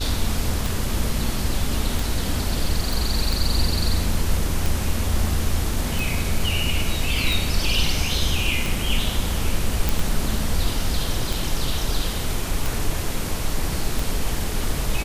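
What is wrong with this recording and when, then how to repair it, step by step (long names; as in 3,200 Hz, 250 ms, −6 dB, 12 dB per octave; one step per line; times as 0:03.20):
scratch tick 45 rpm
0:02.93: click
0:09.89: click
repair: click removal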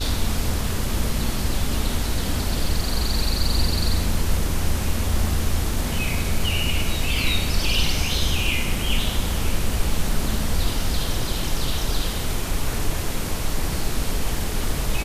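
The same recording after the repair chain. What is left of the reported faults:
none of them is left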